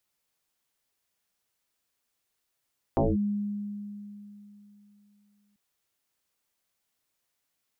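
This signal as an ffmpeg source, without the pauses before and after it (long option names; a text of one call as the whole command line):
ffmpeg -f lavfi -i "aevalsrc='0.106*pow(10,-3*t/3.21)*sin(2*PI*205*t+6*clip(1-t/0.2,0,1)*sin(2*PI*0.57*205*t))':duration=2.59:sample_rate=44100" out.wav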